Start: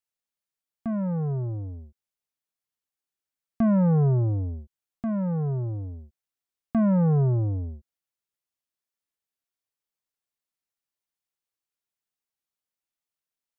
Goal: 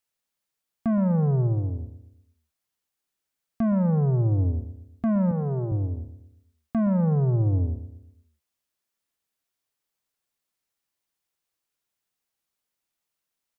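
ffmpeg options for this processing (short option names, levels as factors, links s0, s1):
-filter_complex "[0:a]asettb=1/sr,asplit=3[s0][s1][s2];[s0]atrim=end=5.314[s3];[s1]atrim=start=5.31:end=5.72,asetpts=PTS-STARTPTS,afade=t=in:d=0.004:c=qsin,afade=t=out:st=0.406:d=0.004:c=qsin,highpass=170[s4];[s2]atrim=start=5.716[s5];[s3][s4]acrossfade=d=0.004:c1=hsin:c2=qsin[s6];[s6][s5]acrossfade=d=0.004:c1=qsin:c2=hsin,alimiter=level_in=1.41:limit=0.0631:level=0:latency=1,volume=0.708,asplit=2[s7][s8];[s8]adelay=118,lowpass=f=1100:p=1,volume=0.266,asplit=2[s9][s10];[s10]adelay=118,lowpass=f=1100:p=1,volume=0.46,asplit=2[s11][s12];[s12]adelay=118,lowpass=f=1100:p=1,volume=0.46,asplit=2[s13][s14];[s14]adelay=118,lowpass=f=1100:p=1,volume=0.46,asplit=2[s15][s16];[s16]adelay=118,lowpass=f=1100:p=1,volume=0.46[s17];[s9][s11][s13][s15][s17]amix=inputs=5:normalize=0[s18];[s7][s18]amix=inputs=2:normalize=0,volume=2.11"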